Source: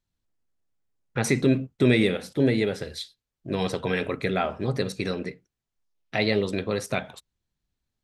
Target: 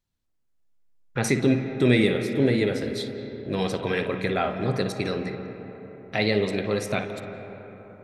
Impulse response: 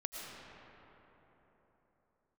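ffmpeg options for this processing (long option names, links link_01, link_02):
-filter_complex "[0:a]asplit=2[link_01][link_02];[1:a]atrim=start_sample=2205,lowpass=3800,adelay=57[link_03];[link_02][link_03]afir=irnorm=-1:irlink=0,volume=-6.5dB[link_04];[link_01][link_04]amix=inputs=2:normalize=0"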